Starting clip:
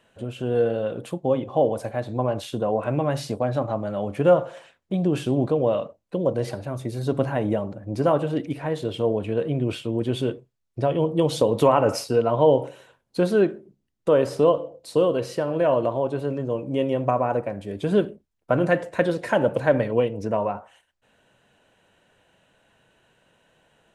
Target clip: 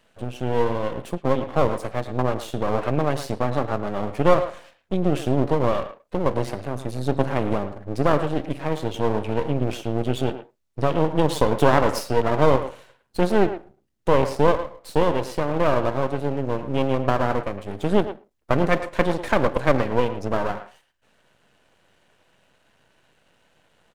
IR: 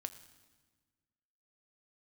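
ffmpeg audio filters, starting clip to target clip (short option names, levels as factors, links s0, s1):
-filter_complex "[0:a]aeval=exprs='max(val(0),0)':c=same,asplit=2[s0][s1];[s1]adelay=110,highpass=300,lowpass=3400,asoftclip=type=hard:threshold=0.2,volume=0.282[s2];[s0][s2]amix=inputs=2:normalize=0,volume=1.58"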